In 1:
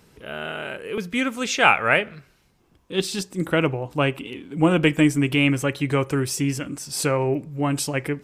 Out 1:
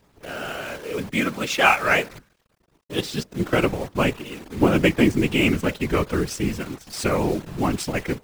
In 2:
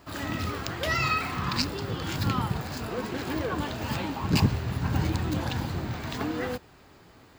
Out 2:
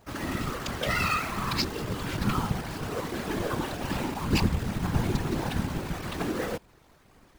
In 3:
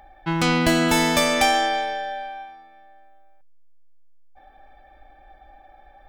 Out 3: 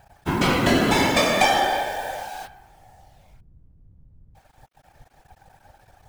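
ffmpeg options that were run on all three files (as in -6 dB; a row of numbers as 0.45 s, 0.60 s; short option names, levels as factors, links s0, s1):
-af "adynamicsmooth=sensitivity=5:basefreq=2200,acrusher=bits=7:dc=4:mix=0:aa=0.000001,afftfilt=real='hypot(re,im)*cos(2*PI*random(0))':imag='hypot(re,im)*sin(2*PI*random(1))':win_size=512:overlap=0.75,volume=2"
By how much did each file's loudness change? -0.5 LU, -0.5 LU, 0.0 LU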